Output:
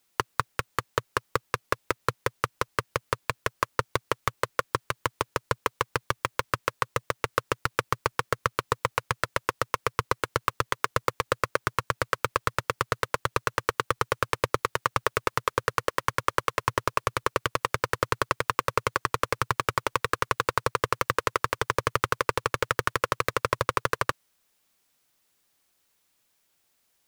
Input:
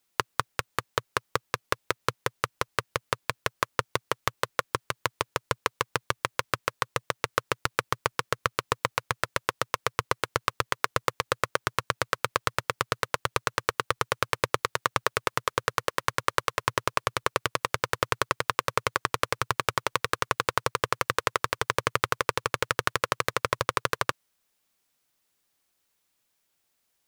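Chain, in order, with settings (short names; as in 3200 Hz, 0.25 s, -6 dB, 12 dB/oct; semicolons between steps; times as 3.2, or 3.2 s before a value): soft clip -11.5 dBFS, distortion -9 dB; gain +4 dB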